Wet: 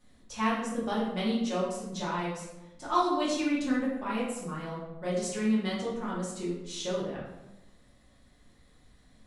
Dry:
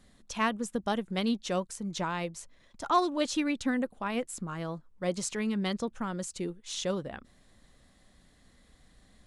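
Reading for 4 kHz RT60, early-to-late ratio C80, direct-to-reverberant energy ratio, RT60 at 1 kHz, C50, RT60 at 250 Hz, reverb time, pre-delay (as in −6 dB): 0.60 s, 5.5 dB, −8.0 dB, 0.90 s, 2.0 dB, 1.3 s, 0.95 s, 3 ms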